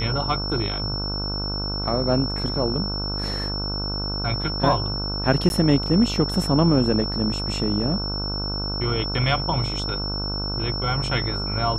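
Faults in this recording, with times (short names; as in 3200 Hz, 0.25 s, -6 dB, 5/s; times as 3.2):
buzz 50 Hz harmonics 30 -29 dBFS
tone 5400 Hz -28 dBFS
5.49–5.5 gap 11 ms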